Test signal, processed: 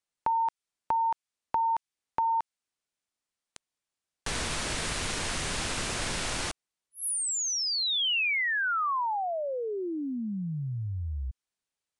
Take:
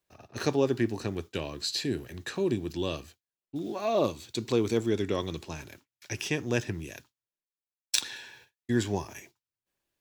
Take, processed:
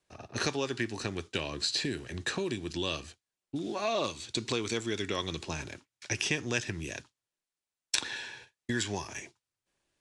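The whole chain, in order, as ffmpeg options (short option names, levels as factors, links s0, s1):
-filter_complex "[0:a]aresample=22050,aresample=44100,acrossover=split=1200|2600[s0][s1][s2];[s0]acompressor=threshold=0.0126:ratio=4[s3];[s1]acompressor=threshold=0.0126:ratio=4[s4];[s2]acompressor=threshold=0.0178:ratio=4[s5];[s3][s4][s5]amix=inputs=3:normalize=0,volume=1.78"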